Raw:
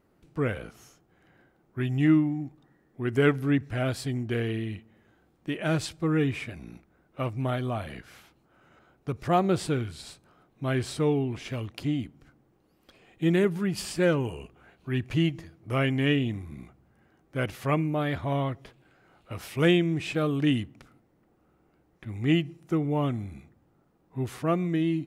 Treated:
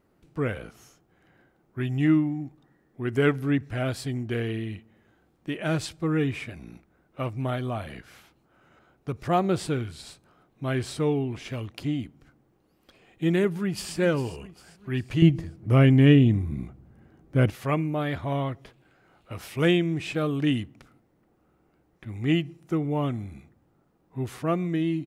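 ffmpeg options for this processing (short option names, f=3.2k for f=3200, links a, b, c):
-filter_complex "[0:a]asplit=2[a][b];[b]afade=t=in:st=13.48:d=0.01,afade=t=out:st=13.96:d=0.01,aecho=0:1:400|800|1200|1600|2000:0.211349|0.105674|0.0528372|0.0264186|0.0132093[c];[a][c]amix=inputs=2:normalize=0,asettb=1/sr,asplit=3[d][e][f];[d]atrim=end=15.224[g];[e]atrim=start=15.22:end=17.5,asetpts=PTS-STARTPTS,afade=t=in:d=0.004:c=qsin,afade=t=out:st=2.276:d=0.004:c=qsin,lowshelf=f=430:g=12[h];[f]atrim=start=17.496[i];[g][h]acrossfade=d=0.004:c1=hsin:c2=qsin[j];[j][i]acrossfade=d=0.004:c1=qsin:c2=hsin"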